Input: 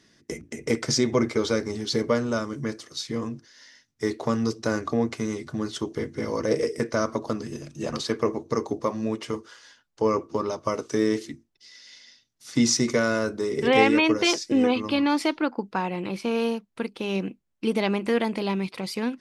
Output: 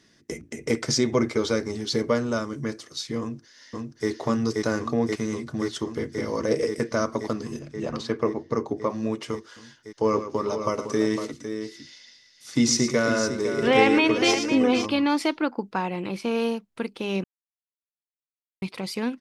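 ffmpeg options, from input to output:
-filter_complex "[0:a]asplit=2[s0][s1];[s1]afade=t=in:st=3.2:d=0.01,afade=t=out:st=4.09:d=0.01,aecho=0:1:530|1060|1590|2120|2650|3180|3710|4240|4770|5300|5830|6360:0.841395|0.715186|0.607908|0.516722|0.439214|0.373331|0.317332|0.269732|0.229272|0.194881|0.165649|0.140802[s2];[s0][s2]amix=inputs=2:normalize=0,asettb=1/sr,asplit=3[s3][s4][s5];[s3]atrim=end=7.594[s6];[s4]atrim=start=7.59:end=8.9,asetpts=PTS-STARTPTS,afade=t=in:d=0.004:c=qsin,afade=t=out:st=1.306:d=0.004:c=qsin,lowpass=f=2600:p=1[s7];[s5]atrim=start=8.896[s8];[s6][s7]acrossfade=d=0.004:c1=hsin:c2=qsin[s9];[s9][s8]acrossfade=d=0.004:c1=qsin:c2=hsin,asplit=3[s10][s11][s12];[s10]afade=t=out:st=10.03:d=0.02[s13];[s11]aecho=1:1:112|506:0.299|0.355,afade=t=in:st=10.03:d=0.02,afade=t=out:st=14.85:d=0.02[s14];[s12]afade=t=in:st=14.85:d=0.02[s15];[s13][s14][s15]amix=inputs=3:normalize=0,asplit=3[s16][s17][s18];[s16]atrim=end=17.24,asetpts=PTS-STARTPTS,afade=t=out:st=17.236:d=0.004:c=hsin[s19];[s17]atrim=start=17.24:end=18.62,asetpts=PTS-STARTPTS,volume=0[s20];[s18]atrim=start=18.62,asetpts=PTS-STARTPTS,afade=t=in:d=0.004:c=hsin[s21];[s19][s20][s21]concat=n=3:v=0:a=1"

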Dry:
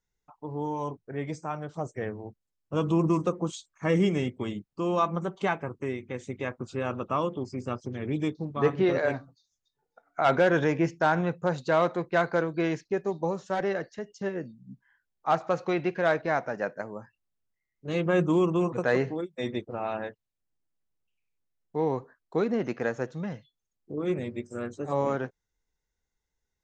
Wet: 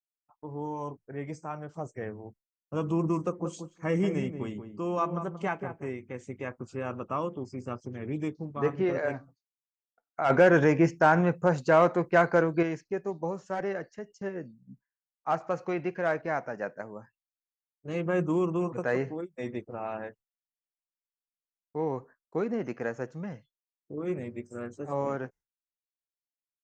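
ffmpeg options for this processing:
-filter_complex "[0:a]asplit=3[s0][s1][s2];[s0]afade=t=out:st=3.39:d=0.02[s3];[s1]asplit=2[s4][s5];[s5]adelay=182,lowpass=f=960:p=1,volume=0.422,asplit=2[s6][s7];[s7]adelay=182,lowpass=f=960:p=1,volume=0.16,asplit=2[s8][s9];[s9]adelay=182,lowpass=f=960:p=1,volume=0.16[s10];[s4][s6][s8][s10]amix=inputs=4:normalize=0,afade=t=in:st=3.39:d=0.02,afade=t=out:st=5.9:d=0.02[s11];[s2]afade=t=in:st=5.9:d=0.02[s12];[s3][s11][s12]amix=inputs=3:normalize=0,asettb=1/sr,asplit=3[s13][s14][s15];[s13]atrim=end=10.304[s16];[s14]atrim=start=10.3:end=12.63,asetpts=PTS-STARTPTS,afade=t=in:d=0.004:c=qsin,afade=t=out:st=2.326:d=0.004:c=qsin,acontrast=74[s17];[s15]atrim=start=12.626[s18];[s16][s17]acrossfade=d=0.004:c1=hsin:c2=qsin[s19];[s19][s18]acrossfade=d=0.004:c1=qsin:c2=hsin,agate=range=0.0224:threshold=0.00501:ratio=3:detection=peak,equalizer=f=3700:t=o:w=0.39:g=-12.5,volume=0.668"

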